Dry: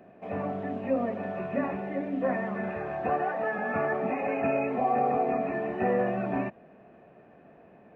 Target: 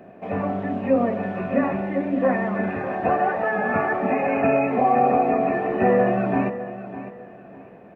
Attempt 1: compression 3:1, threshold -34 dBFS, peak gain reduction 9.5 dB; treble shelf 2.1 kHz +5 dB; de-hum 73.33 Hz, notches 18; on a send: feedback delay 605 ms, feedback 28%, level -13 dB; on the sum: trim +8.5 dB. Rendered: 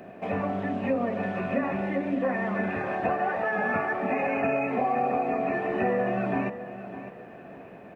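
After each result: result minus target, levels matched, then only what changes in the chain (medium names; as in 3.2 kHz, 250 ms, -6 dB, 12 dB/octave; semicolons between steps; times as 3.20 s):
compression: peak gain reduction +9.5 dB; 4 kHz band +6.0 dB
remove: compression 3:1, threshold -34 dBFS, peak gain reduction 9.5 dB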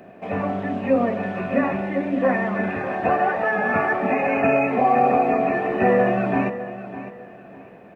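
4 kHz band +4.5 dB
change: treble shelf 2.1 kHz -3 dB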